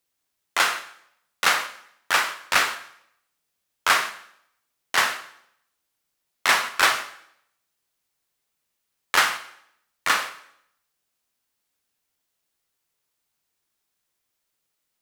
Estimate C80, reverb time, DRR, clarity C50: 15.0 dB, 0.70 s, 7.5 dB, 12.0 dB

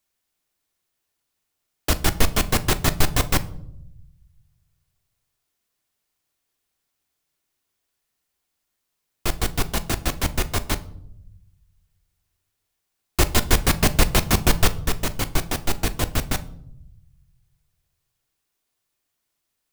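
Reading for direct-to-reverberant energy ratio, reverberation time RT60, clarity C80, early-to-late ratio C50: 10.0 dB, 0.75 s, 21.5 dB, 17.5 dB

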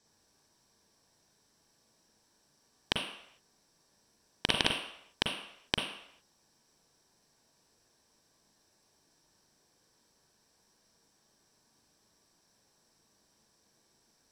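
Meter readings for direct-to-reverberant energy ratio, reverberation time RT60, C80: 1.5 dB, non-exponential decay, 8.5 dB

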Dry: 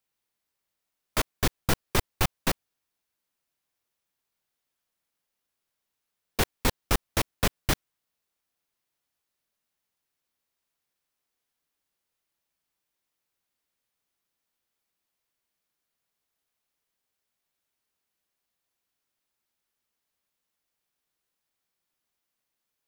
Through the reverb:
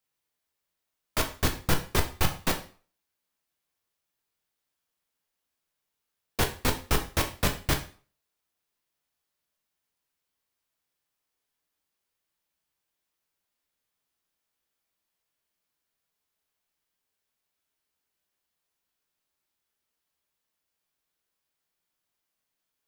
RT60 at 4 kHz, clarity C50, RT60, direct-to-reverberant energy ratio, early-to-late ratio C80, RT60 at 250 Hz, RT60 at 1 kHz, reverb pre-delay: 0.40 s, 11.5 dB, 0.40 s, 3.5 dB, 16.0 dB, 0.40 s, 0.40 s, 5 ms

